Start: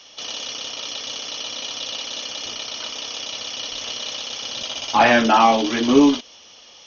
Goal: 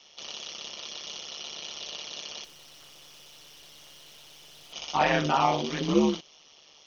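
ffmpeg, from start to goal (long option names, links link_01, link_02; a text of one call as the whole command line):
ffmpeg -i in.wav -filter_complex "[0:a]bandreject=frequency=1600:width=13,aeval=exprs='val(0)*sin(2*PI*74*n/s)':channel_layout=same,asplit=3[link_01][link_02][link_03];[link_01]afade=type=out:start_time=2.43:duration=0.02[link_04];[link_02]aeval=exprs='(tanh(141*val(0)+0.45)-tanh(0.45))/141':channel_layout=same,afade=type=in:start_time=2.43:duration=0.02,afade=type=out:start_time=4.72:duration=0.02[link_05];[link_03]afade=type=in:start_time=4.72:duration=0.02[link_06];[link_04][link_05][link_06]amix=inputs=3:normalize=0,volume=-6.5dB" out.wav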